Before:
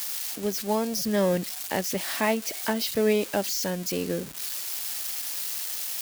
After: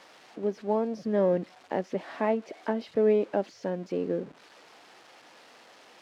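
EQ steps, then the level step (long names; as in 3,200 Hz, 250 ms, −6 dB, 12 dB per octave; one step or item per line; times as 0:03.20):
high-pass filter 390 Hz 12 dB per octave
head-to-tape spacing loss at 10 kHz 21 dB
spectral tilt −4.5 dB per octave
−1.5 dB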